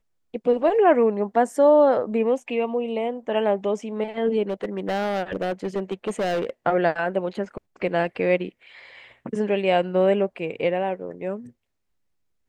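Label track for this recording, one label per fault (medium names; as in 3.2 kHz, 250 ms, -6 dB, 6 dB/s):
4.490000	6.500000	clipped -21 dBFS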